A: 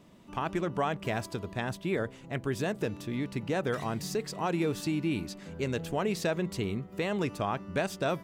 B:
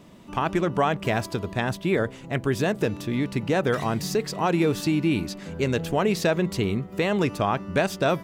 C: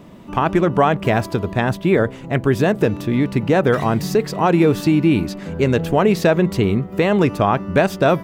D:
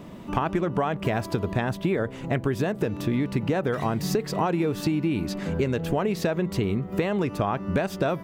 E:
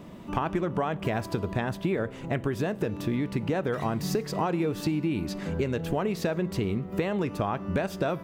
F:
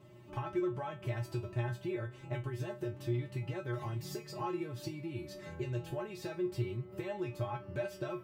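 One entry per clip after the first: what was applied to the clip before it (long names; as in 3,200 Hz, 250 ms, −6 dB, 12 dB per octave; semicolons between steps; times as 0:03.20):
dynamic equaliser 8,300 Hz, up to −3 dB, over −54 dBFS, Q 1.9; level +7.5 dB
parametric band 7,000 Hz −7.5 dB 2.7 octaves; level +8 dB
downward compressor 10 to 1, threshold −21 dBFS, peak gain reduction 11.5 dB
dense smooth reverb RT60 0.7 s, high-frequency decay 0.95×, DRR 18 dB; level −3 dB
tuned comb filter 120 Hz, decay 0.2 s, harmonics odd, mix 100%; level +1 dB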